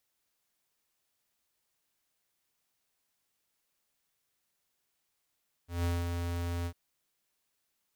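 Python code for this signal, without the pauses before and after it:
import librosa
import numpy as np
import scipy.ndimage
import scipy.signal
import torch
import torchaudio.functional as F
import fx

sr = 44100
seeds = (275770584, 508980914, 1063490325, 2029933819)

y = fx.adsr_tone(sr, wave='square', hz=86.2, attack_ms=163.0, decay_ms=205.0, sustain_db=-4.5, held_s=0.98, release_ms=70.0, level_db=-29.5)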